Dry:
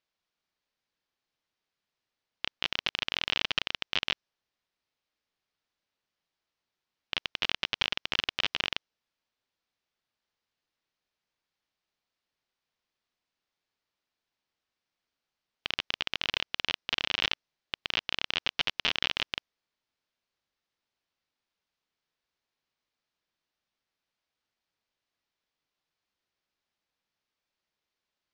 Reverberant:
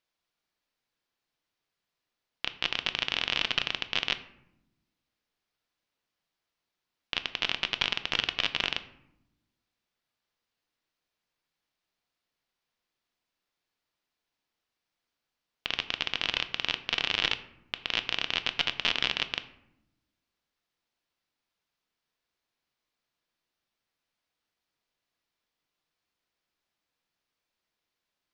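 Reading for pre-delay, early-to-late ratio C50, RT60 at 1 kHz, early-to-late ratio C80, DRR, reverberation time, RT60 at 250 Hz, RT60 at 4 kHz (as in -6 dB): 3 ms, 14.5 dB, 0.75 s, 17.0 dB, 10.0 dB, 0.85 s, 1.4 s, 0.45 s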